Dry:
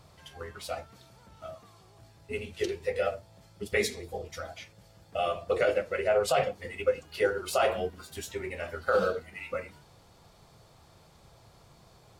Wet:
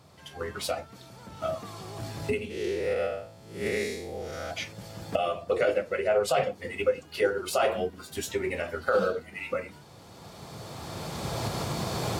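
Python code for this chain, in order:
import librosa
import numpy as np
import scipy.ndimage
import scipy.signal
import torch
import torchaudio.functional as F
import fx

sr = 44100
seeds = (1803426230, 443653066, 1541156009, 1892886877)

y = fx.spec_blur(x, sr, span_ms=196.0, at=(2.49, 4.5), fade=0.02)
y = fx.recorder_agc(y, sr, target_db=-21.0, rise_db_per_s=13.0, max_gain_db=30)
y = scipy.signal.sosfilt(scipy.signal.butter(2, 85.0, 'highpass', fs=sr, output='sos'), y)
y = fx.peak_eq(y, sr, hz=260.0, db=4.0, octaves=1.2)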